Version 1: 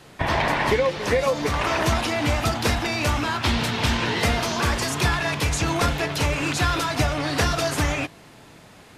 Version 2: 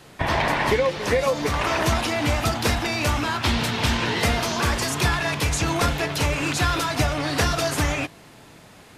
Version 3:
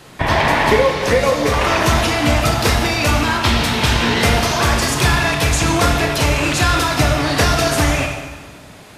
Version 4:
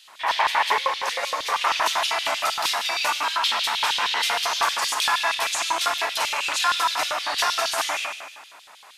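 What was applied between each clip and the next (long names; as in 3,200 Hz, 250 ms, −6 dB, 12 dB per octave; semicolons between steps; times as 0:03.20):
high-shelf EQ 9,400 Hz +3.5 dB
convolution reverb RT60 1.4 s, pre-delay 18 ms, DRR 3.5 dB; level +5.5 dB
auto-filter high-pass square 6.4 Hz 940–3,300 Hz; level −7 dB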